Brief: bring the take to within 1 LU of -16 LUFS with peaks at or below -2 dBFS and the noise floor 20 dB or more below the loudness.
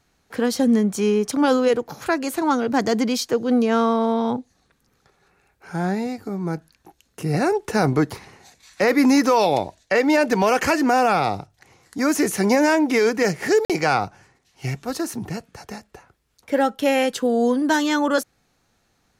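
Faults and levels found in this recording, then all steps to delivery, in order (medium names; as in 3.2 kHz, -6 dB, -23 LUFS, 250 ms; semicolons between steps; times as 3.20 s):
dropouts 1; longest dropout 47 ms; loudness -20.5 LUFS; peak level -7.5 dBFS; loudness target -16.0 LUFS
-> interpolate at 13.65 s, 47 ms; trim +4.5 dB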